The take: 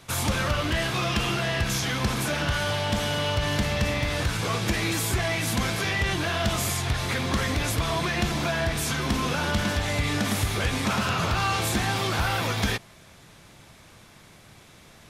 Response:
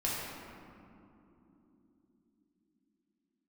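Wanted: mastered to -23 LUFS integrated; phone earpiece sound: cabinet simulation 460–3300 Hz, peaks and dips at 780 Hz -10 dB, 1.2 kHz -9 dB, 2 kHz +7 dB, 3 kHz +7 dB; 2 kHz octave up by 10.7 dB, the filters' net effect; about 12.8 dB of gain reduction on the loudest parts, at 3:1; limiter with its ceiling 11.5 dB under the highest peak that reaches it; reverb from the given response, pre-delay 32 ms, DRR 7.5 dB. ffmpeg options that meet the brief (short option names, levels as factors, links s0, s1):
-filter_complex "[0:a]equalizer=f=2000:t=o:g=8.5,acompressor=threshold=0.0141:ratio=3,alimiter=level_in=2.66:limit=0.0631:level=0:latency=1,volume=0.376,asplit=2[s0][s1];[1:a]atrim=start_sample=2205,adelay=32[s2];[s1][s2]afir=irnorm=-1:irlink=0,volume=0.2[s3];[s0][s3]amix=inputs=2:normalize=0,highpass=460,equalizer=f=780:t=q:w=4:g=-10,equalizer=f=1200:t=q:w=4:g=-9,equalizer=f=2000:t=q:w=4:g=7,equalizer=f=3000:t=q:w=4:g=7,lowpass=f=3300:w=0.5412,lowpass=f=3300:w=1.3066,volume=5.62"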